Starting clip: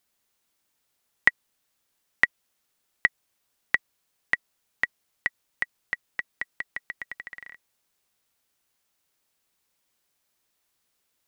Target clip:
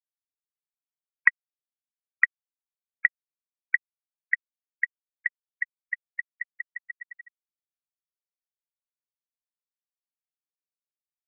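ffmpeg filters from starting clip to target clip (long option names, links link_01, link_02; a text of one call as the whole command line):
ffmpeg -i in.wav -af "afftfilt=real='re*gte(hypot(re,im),0.126)':imag='im*gte(hypot(re,im),0.126)':win_size=1024:overlap=0.75,asubboost=boost=10.5:cutoff=210,volume=1dB" out.wav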